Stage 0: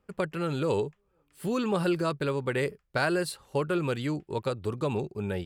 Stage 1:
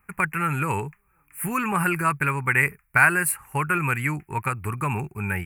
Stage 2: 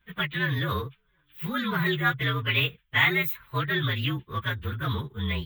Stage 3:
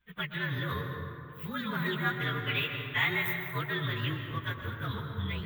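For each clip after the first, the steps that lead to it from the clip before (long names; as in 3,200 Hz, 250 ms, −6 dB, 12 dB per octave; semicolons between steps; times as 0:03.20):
drawn EQ curve 140 Hz 0 dB, 230 Hz −6 dB, 380 Hz −10 dB, 550 Hz −16 dB, 850 Hz +2 dB, 2,400 Hz +11 dB, 3,600 Hz −25 dB, 11,000 Hz +14 dB; level +6.5 dB
partials spread apart or drawn together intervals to 115%
dense smooth reverb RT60 2.6 s, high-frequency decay 0.45×, pre-delay 110 ms, DRR 4 dB; level −7 dB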